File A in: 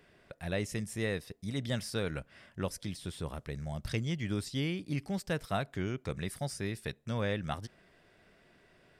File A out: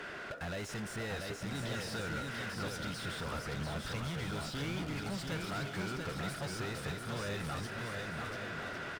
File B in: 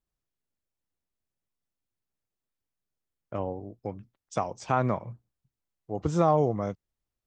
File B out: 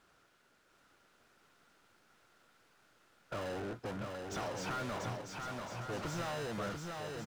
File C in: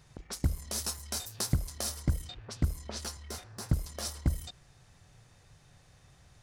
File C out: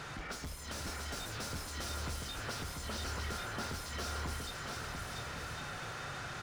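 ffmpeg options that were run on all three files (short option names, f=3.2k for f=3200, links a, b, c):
-filter_complex "[0:a]asplit=2[a][b];[b]acrusher=samples=39:mix=1:aa=0.000001,volume=-9dB[c];[a][c]amix=inputs=2:normalize=0,equalizer=f=1.4k:t=o:w=0.26:g=10,acrossover=split=3300[d][e];[d]acompressor=threshold=-37dB:ratio=6[f];[e]highshelf=f=12k:g=-7.5[g];[f][g]amix=inputs=2:normalize=0,asoftclip=type=hard:threshold=-39.5dB,asplit=2[h][i];[i]highpass=f=720:p=1,volume=29dB,asoftclip=type=tanh:threshold=-39.5dB[j];[h][j]amix=inputs=2:normalize=0,lowpass=f=2.4k:p=1,volume=-6dB,aecho=1:1:690|1104|1352|1501|1591:0.631|0.398|0.251|0.158|0.1,volume=4.5dB"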